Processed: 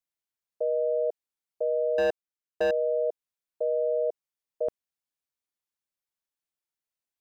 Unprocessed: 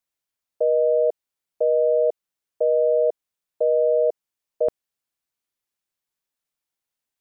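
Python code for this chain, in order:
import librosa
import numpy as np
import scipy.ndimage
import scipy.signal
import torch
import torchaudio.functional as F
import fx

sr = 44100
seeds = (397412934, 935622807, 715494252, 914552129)

y = fx.leveller(x, sr, passes=3, at=(1.98, 2.71))
y = y * librosa.db_to_amplitude(-7.5)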